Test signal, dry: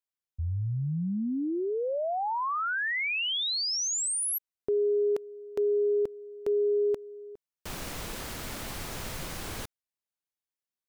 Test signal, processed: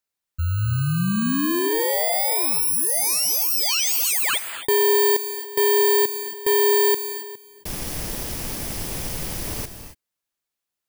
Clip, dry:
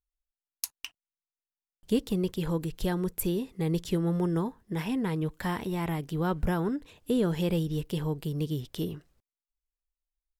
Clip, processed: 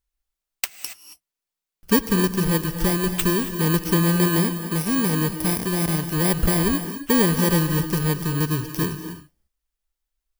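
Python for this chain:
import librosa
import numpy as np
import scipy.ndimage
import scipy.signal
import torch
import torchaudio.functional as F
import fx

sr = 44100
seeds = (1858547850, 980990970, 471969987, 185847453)

y = fx.bit_reversed(x, sr, seeds[0], block=32)
y = fx.rev_gated(y, sr, seeds[1], gate_ms=300, shape='rising', drr_db=9.5)
y = y * librosa.db_to_amplitude(8.0)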